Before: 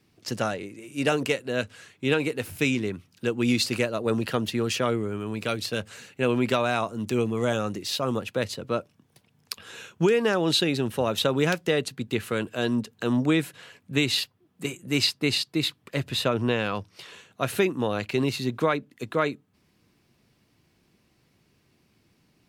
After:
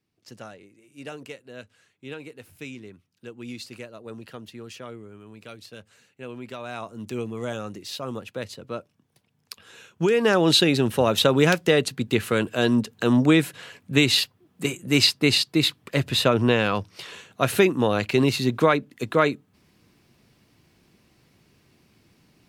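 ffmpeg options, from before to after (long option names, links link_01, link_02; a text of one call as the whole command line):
ffmpeg -i in.wav -af "volume=5dB,afade=type=in:start_time=6.53:duration=0.47:silence=0.375837,afade=type=in:start_time=9.91:duration=0.45:silence=0.298538" out.wav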